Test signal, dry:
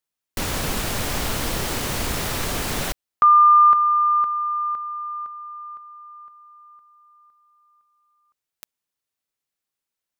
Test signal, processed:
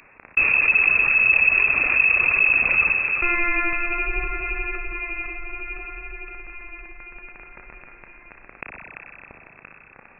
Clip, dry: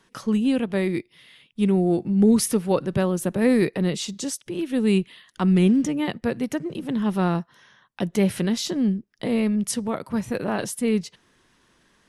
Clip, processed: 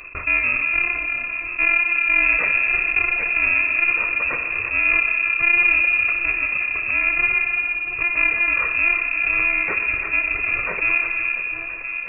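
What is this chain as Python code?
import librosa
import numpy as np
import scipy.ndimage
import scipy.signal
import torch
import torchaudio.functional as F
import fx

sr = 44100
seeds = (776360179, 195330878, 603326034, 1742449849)

p1 = fx.bit_reversed(x, sr, seeds[0], block=128)
p2 = fx.dereverb_blind(p1, sr, rt60_s=1.8)
p3 = fx.low_shelf(p2, sr, hz=260.0, db=6.0)
p4 = 10.0 ** (-15.0 / 20.0) * np.tanh(p3 / 10.0 ** (-15.0 / 20.0))
p5 = fx.vibrato(p4, sr, rate_hz=0.63, depth_cents=17.0)
p6 = fx.dmg_crackle(p5, sr, seeds[1], per_s=10.0, level_db=-48.0)
p7 = p6 + fx.echo_alternate(p6, sr, ms=341, hz=1800.0, feedback_pct=59, wet_db=-10.0, dry=0)
p8 = fx.rev_spring(p7, sr, rt60_s=1.8, pass_ms=(31, 56), chirp_ms=30, drr_db=5.5)
p9 = fx.freq_invert(p8, sr, carrier_hz=2600)
p10 = fx.env_flatten(p9, sr, amount_pct=50)
y = p10 * librosa.db_to_amplitude(3.0)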